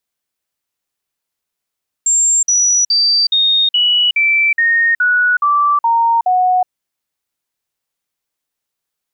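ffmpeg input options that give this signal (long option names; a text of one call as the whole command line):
ffmpeg -f lavfi -i "aevalsrc='0.335*clip(min(mod(t,0.42),0.37-mod(t,0.42))/0.005,0,1)*sin(2*PI*7400*pow(2,-floor(t/0.42)/3)*mod(t,0.42))':duration=4.62:sample_rate=44100" out.wav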